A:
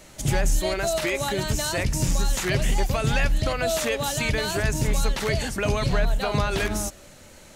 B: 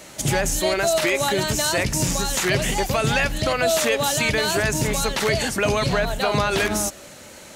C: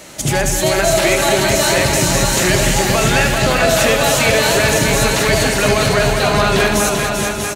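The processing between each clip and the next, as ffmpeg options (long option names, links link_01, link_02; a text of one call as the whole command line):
ffmpeg -i in.wav -filter_complex "[0:a]highpass=frequency=190:poles=1,asplit=2[link_01][link_02];[link_02]alimiter=limit=-21.5dB:level=0:latency=1:release=102,volume=-3dB[link_03];[link_01][link_03]amix=inputs=2:normalize=0,volume=2.5dB" out.wav
ffmpeg -i in.wav -filter_complex "[0:a]asplit=2[link_01][link_02];[link_02]aecho=0:1:391:0.531[link_03];[link_01][link_03]amix=inputs=2:normalize=0,acontrast=41,asplit=2[link_04][link_05];[link_05]aecho=0:1:77|200|646|841:0.398|0.398|0.473|0.355[link_06];[link_04][link_06]amix=inputs=2:normalize=0,volume=-1dB" out.wav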